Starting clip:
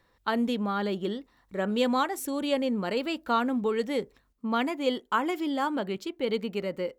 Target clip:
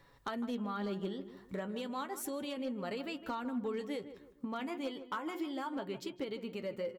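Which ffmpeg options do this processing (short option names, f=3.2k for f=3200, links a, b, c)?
-filter_complex "[0:a]equalizer=f=130:t=o:w=0.34:g=8.5,bandreject=f=360:t=h:w=4,bandreject=f=720:t=h:w=4,bandreject=f=1.08k:t=h:w=4,bandreject=f=1.44k:t=h:w=4,bandreject=f=1.8k:t=h:w=4,bandreject=f=2.16k:t=h:w=4,bandreject=f=2.52k:t=h:w=4,bandreject=f=2.88k:t=h:w=4,bandreject=f=3.24k:t=h:w=4,acompressor=threshold=-39dB:ratio=10,flanger=delay=7.1:depth=4.5:regen=47:speed=0.33:shape=sinusoidal,asoftclip=type=hard:threshold=-37.5dB,asplit=2[a][b];[b]adelay=156,lowpass=f=1.4k:p=1,volume=-11dB,asplit=2[c][d];[d]adelay=156,lowpass=f=1.4k:p=1,volume=0.38,asplit=2[e][f];[f]adelay=156,lowpass=f=1.4k:p=1,volume=0.38,asplit=2[g][h];[h]adelay=156,lowpass=f=1.4k:p=1,volume=0.38[i];[a][c][e][g][i]amix=inputs=5:normalize=0,volume=7dB"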